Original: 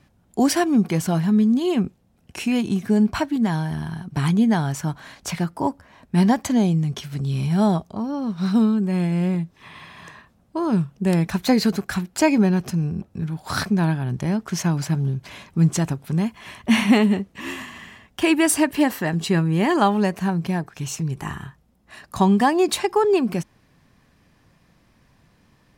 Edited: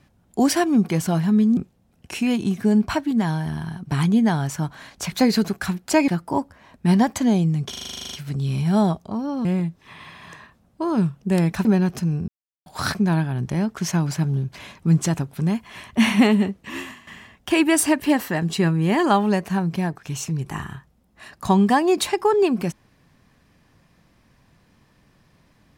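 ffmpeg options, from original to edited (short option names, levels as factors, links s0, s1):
-filter_complex "[0:a]asplit=20[s0][s1][s2][s3][s4][s5][s6][s7][s8][s9][s10][s11][s12][s13][s14][s15][s16][s17][s18][s19];[s0]atrim=end=1.572[s20];[s1]atrim=start=1.818:end=5.372[s21];[s2]atrim=start=11.398:end=12.362[s22];[s3]atrim=start=5.368:end=7.022[s23];[s4]atrim=start=6.978:end=7.022[s24];[s5]atrim=start=6.978:end=7.022[s25];[s6]atrim=start=6.978:end=7.022[s26];[s7]atrim=start=6.978:end=7.022[s27];[s8]atrim=start=6.978:end=7.022[s28];[s9]atrim=start=6.978:end=7.022[s29];[s10]atrim=start=6.978:end=7.022[s30];[s11]atrim=start=6.978:end=7.022[s31];[s12]atrim=start=6.978:end=7.022[s32];[s13]atrim=start=6.978:end=7.022[s33];[s14]atrim=start=6.978:end=8.302[s34];[s15]atrim=start=9.198:end=11.402[s35];[s16]atrim=start=12.358:end=12.99,asetpts=PTS-STARTPTS,afade=t=out:st=0.628:d=0.004:c=hsin[s36];[s17]atrim=start=12.99:end=13.37,asetpts=PTS-STARTPTS,volume=0[s37];[s18]atrim=start=13.37:end=17.78,asetpts=PTS-STARTPTS,afade=t=in:d=0.004:c=hsin,afade=t=out:st=4.09:d=0.32:silence=0.211349[s38];[s19]atrim=start=17.78,asetpts=PTS-STARTPTS,afade=t=in:d=0.004:c=hsin:silence=0.211349[s39];[s20][s21]acrossfade=d=0.004:c1=hsin:c2=hsin[s40];[s40][s22]acrossfade=d=0.004:c1=hsin:c2=hsin[s41];[s41][s23]acrossfade=d=0.004:c1=hsin:c2=hsin[s42];[s42][s24]acrossfade=d=0.004:c1=hsin:c2=hsin[s43];[s43][s25]acrossfade=d=0.004:c1=hsin:c2=hsin[s44];[s44][s26]acrossfade=d=0.004:c1=hsin:c2=hsin[s45];[s45][s27]acrossfade=d=0.004:c1=hsin:c2=hsin[s46];[s46][s28]acrossfade=d=0.004:c1=hsin:c2=hsin[s47];[s47][s29]acrossfade=d=0.004:c1=hsin:c2=hsin[s48];[s48][s30]acrossfade=d=0.004:c1=hsin:c2=hsin[s49];[s49][s31]acrossfade=d=0.004:c1=hsin:c2=hsin[s50];[s50][s32]acrossfade=d=0.004:c1=hsin:c2=hsin[s51];[s51][s33]acrossfade=d=0.004:c1=hsin:c2=hsin[s52];[s52][s34]acrossfade=d=0.004:c1=hsin:c2=hsin[s53];[s53][s35]acrossfade=d=0.004:c1=hsin:c2=hsin[s54];[s36][s37][s38][s39]concat=n=4:v=0:a=1[s55];[s54][s55]acrossfade=d=0.004:c1=hsin:c2=hsin"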